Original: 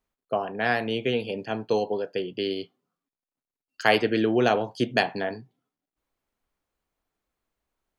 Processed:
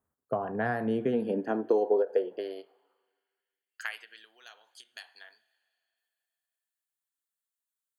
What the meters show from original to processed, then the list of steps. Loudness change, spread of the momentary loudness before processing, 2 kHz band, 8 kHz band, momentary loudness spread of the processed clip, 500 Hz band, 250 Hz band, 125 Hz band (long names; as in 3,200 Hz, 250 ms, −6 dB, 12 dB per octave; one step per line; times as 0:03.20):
−4.0 dB, 10 LU, −11.0 dB, can't be measured, 21 LU, −4.0 dB, −5.5 dB, −7.5 dB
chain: flat-topped bell 3,600 Hz −16 dB
coupled-rooms reverb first 0.51 s, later 3.1 s, from −15 dB, DRR 19 dB
downward compressor 6 to 1, threshold −26 dBFS, peak gain reduction 10 dB
high-pass filter sweep 87 Hz → 3,500 Hz, 0:00.28–0:04.28
every ending faded ahead of time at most 360 dB per second